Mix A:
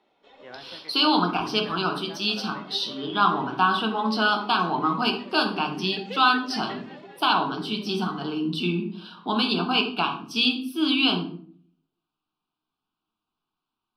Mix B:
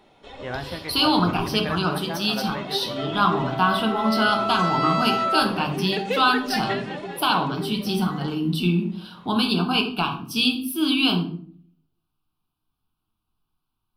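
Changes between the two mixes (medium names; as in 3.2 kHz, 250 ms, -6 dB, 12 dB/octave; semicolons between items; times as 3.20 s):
first sound +11.0 dB; second sound: unmuted; master: remove three-band isolator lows -19 dB, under 200 Hz, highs -19 dB, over 6.7 kHz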